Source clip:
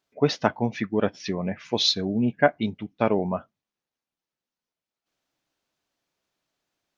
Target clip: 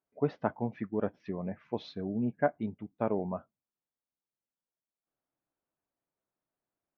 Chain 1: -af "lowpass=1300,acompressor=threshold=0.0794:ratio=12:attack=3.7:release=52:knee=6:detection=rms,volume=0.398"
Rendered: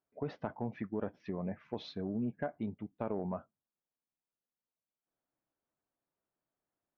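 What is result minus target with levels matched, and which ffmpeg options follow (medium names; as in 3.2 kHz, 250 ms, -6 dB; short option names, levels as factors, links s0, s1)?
compression: peak gain reduction +11.5 dB
-af "lowpass=1300,volume=0.398"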